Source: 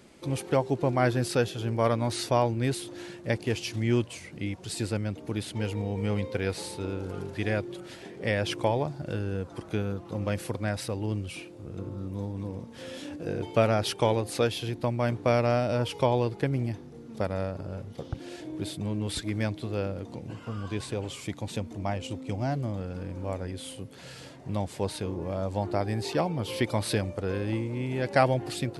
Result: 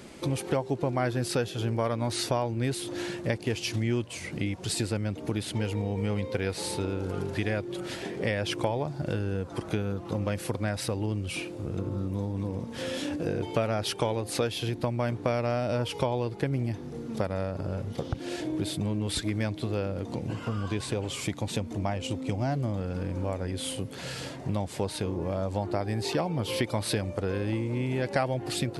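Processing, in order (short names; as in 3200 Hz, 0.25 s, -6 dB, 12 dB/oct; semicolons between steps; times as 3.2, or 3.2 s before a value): compressor 3:1, threshold -36 dBFS, peak gain reduction 14.5 dB; gain +8 dB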